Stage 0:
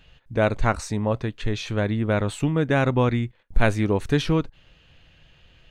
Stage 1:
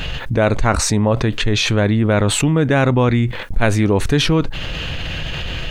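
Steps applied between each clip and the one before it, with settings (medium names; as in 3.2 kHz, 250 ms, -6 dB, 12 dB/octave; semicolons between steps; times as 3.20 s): level flattener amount 70%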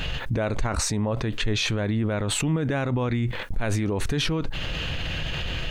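peak limiter -11.5 dBFS, peak gain reduction 9.5 dB; trim -4.5 dB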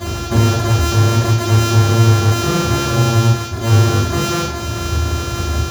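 sorted samples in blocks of 128 samples; reverberation RT60 0.70 s, pre-delay 3 ms, DRR -15 dB; trim -8 dB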